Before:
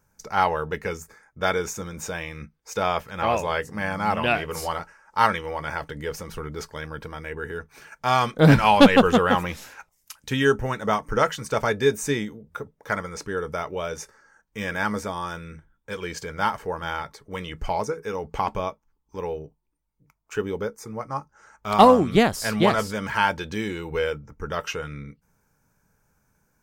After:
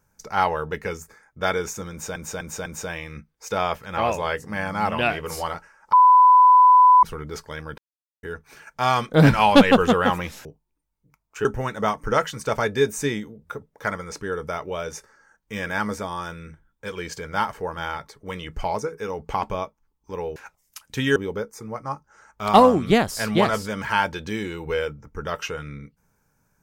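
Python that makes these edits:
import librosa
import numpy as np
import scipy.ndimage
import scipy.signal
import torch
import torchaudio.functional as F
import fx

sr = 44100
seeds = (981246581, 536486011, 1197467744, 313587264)

y = fx.edit(x, sr, fx.repeat(start_s=1.91, length_s=0.25, count=4),
    fx.bleep(start_s=5.18, length_s=1.1, hz=1000.0, db=-9.0),
    fx.silence(start_s=7.03, length_s=0.45),
    fx.swap(start_s=9.7, length_s=0.8, other_s=19.41, other_length_s=1.0), tone=tone)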